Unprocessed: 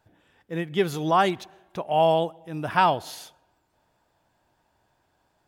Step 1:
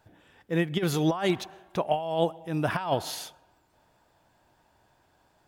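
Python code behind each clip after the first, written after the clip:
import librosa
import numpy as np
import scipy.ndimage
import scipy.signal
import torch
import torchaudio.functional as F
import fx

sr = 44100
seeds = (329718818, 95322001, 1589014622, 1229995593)

y = fx.over_compress(x, sr, threshold_db=-24.0, ratio=-0.5)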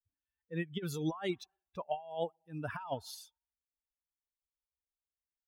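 y = fx.bin_expand(x, sr, power=2.0)
y = y * 10.0 ** (-7.5 / 20.0)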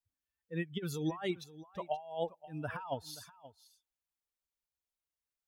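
y = x + 10.0 ** (-17.0 / 20.0) * np.pad(x, (int(528 * sr / 1000.0), 0))[:len(x)]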